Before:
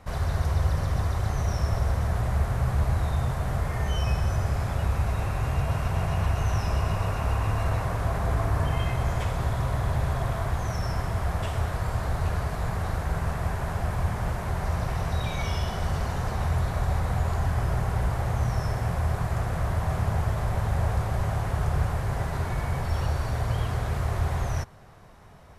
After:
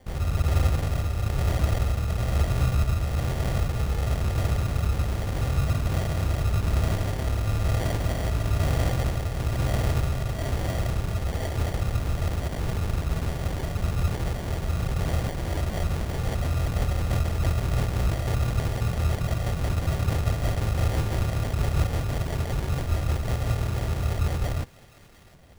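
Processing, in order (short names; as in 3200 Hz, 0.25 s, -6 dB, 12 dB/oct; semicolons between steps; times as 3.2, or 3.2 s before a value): 20.83–21.26 band shelf 2000 Hz +9.5 dB; in parallel at -10 dB: bit-crush 5-bit; on the sum: rotary speaker horn 1.1 Hz, later 6 Hz, at 15.03; sample-and-hold 34×; on a send: thin delay 0.705 s, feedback 44%, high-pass 1500 Hz, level -17.5 dB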